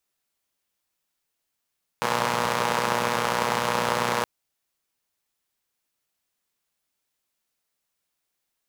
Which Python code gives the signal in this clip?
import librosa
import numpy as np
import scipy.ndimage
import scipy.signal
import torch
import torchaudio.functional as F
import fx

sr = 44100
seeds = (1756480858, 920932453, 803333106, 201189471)

y = fx.engine_four(sr, seeds[0], length_s=2.22, rpm=3600, resonances_hz=(200.0, 520.0, 900.0))